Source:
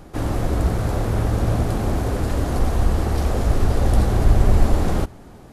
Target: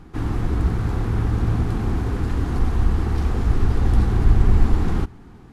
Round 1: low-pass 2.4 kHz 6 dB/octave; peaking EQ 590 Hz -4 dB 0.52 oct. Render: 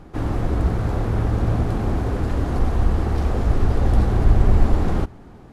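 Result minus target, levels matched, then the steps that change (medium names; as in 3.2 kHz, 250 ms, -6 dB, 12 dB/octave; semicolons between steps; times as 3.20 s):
500 Hz band +4.0 dB
change: peaking EQ 590 Hz -16 dB 0.52 oct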